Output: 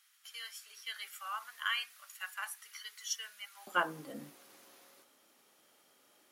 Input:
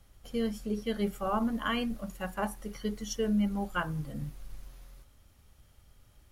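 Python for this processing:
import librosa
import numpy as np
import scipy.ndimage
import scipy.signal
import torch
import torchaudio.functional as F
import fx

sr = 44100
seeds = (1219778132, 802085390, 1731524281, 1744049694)

y = fx.highpass(x, sr, hz=fx.steps((0.0, 1400.0), (3.67, 280.0)), slope=24)
y = y * 10.0 ** (2.0 / 20.0)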